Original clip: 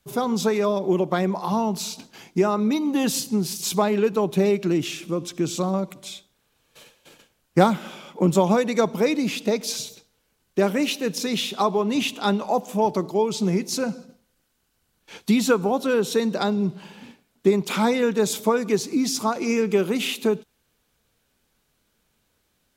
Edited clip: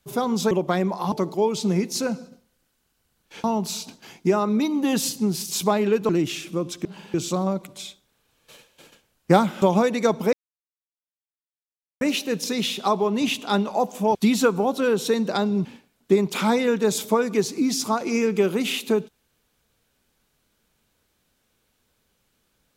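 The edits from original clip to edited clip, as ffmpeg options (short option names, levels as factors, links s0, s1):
-filter_complex "[0:a]asplit=12[s0][s1][s2][s3][s4][s5][s6][s7][s8][s9][s10][s11];[s0]atrim=end=0.512[s12];[s1]atrim=start=0.938:end=1.552[s13];[s2]atrim=start=12.888:end=15.212[s14];[s3]atrim=start=1.548:end=4.202[s15];[s4]atrim=start=4.648:end=5.412[s16];[s5]atrim=start=16.708:end=17.002[s17];[s6]atrim=start=5.408:end=7.892[s18];[s7]atrim=start=8.358:end=9.07,asetpts=PTS-STARTPTS,afade=t=out:st=0.708:d=0.004:c=hsin[s19];[s8]atrim=start=9.07:end=10.75,asetpts=PTS-STARTPTS,volume=0[s20];[s9]atrim=start=10.75:end=12.892,asetpts=PTS-STARTPTS,afade=t=in:d=0.004:c=hsin[s21];[s10]atrim=start=15.208:end=16.712[s22];[s11]atrim=start=16.998[s23];[s12][s13]acrossfade=d=0.004:c1=hsin:c2=hsin[s24];[s24][s14]acrossfade=d=0.004:c1=hsin:c2=hsin[s25];[s25][s15]acrossfade=d=0.004:c1=hsin:c2=hsin[s26];[s26][s16]acrossfade=d=0.004:c1=hsin:c2=hsin[s27];[s27][s17]acrossfade=d=0.004:c1=hsin:c2=hsin[s28];[s28][s18]acrossfade=d=0.004:c1=hsin:c2=hsin[s29];[s19][s20][s21]concat=n=3:v=0:a=1[s30];[s29][s30]acrossfade=d=0.004:c1=hsin:c2=hsin[s31];[s31][s22]acrossfade=d=0.004:c1=hsin:c2=hsin[s32];[s32][s23]acrossfade=d=0.004:c1=hsin:c2=hsin"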